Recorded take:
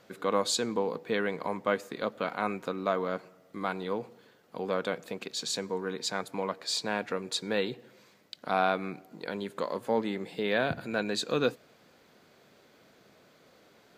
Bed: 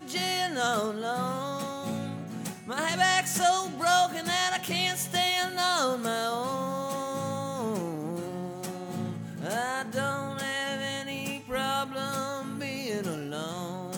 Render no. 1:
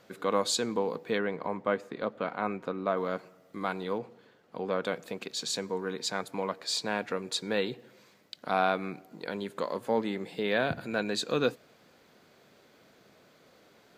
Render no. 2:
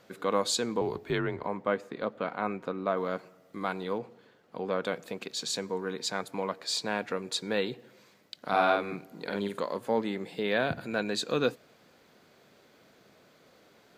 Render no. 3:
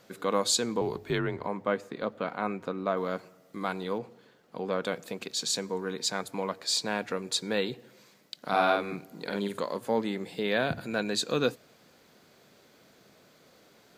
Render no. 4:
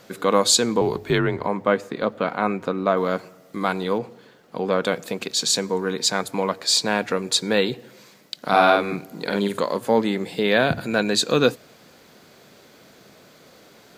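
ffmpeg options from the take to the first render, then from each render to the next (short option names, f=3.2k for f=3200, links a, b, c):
-filter_complex "[0:a]asettb=1/sr,asplit=3[a][b][c];[a]atrim=end=1.184[d];[b]atrim=start=1.18:end=2.97,asetpts=PTS-STARTPTS,afade=t=in:d=0.004:c=qsin,afade=t=out:st=1.786:d=0.004:c=qsin,lowpass=f=2k:p=1[e];[c]atrim=start=2.966[f];[d][e]acrossfade=d=0.004:c1=hsin:c2=qsin[g];[g][f]acrossfade=d=0.004:c1=qsin:c2=hsin,asettb=1/sr,asplit=3[h][i][j];[h]atrim=end=3.984[k];[i]atrim=start=3.98:end=4.84,asetpts=PTS-STARTPTS,afade=t=in:d=0.004:c=qsin,afade=t=out:st=0.856:d=0.004:c=qsin,lowpass=f=3.8k:p=1[l];[j]atrim=start=4.836[m];[k][l]acrossfade=d=0.004:c1=hsin:c2=qsin[n];[n][m]acrossfade=d=0.004:c1=qsin:c2=hsin"
-filter_complex "[0:a]asettb=1/sr,asplit=3[a][b][c];[a]atrim=end=0.814[d];[b]atrim=start=0.81:end=1.43,asetpts=PTS-STARTPTS,afade=t=in:d=0.004:c=qsin,afade=t=out:st=0.616:d=0.004:c=qsin,afreqshift=-67[e];[c]atrim=start=1.426[f];[d][e]acrossfade=d=0.004:c1=hsin:c2=qsin[g];[g][f]acrossfade=d=0.004:c1=qsin:c2=hsin,asettb=1/sr,asplit=3[h][i][j];[h]atrim=end=8.394[k];[i]atrim=start=8.39:end=9.6,asetpts=PTS-STARTPTS,afade=t=in:d=0.004:c=qsin,afade=t=out:st=1.206:d=0.004:c=qsin,asplit=2[l][m];[m]adelay=50,volume=-2dB[n];[l][n]amix=inputs=2:normalize=0,atrim=end_sample=53361[o];[j]atrim=start=9.596[p];[k][o]acrossfade=d=0.004:c1=hsin:c2=qsin[q];[q][p]acrossfade=d=0.004:c1=qsin:c2=hsin"
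-af "bass=f=250:g=2,treble=f=4k:g=5,bandreject=f=50:t=h:w=6,bandreject=f=100:t=h:w=6"
-af "volume=9dB,alimiter=limit=-2dB:level=0:latency=1"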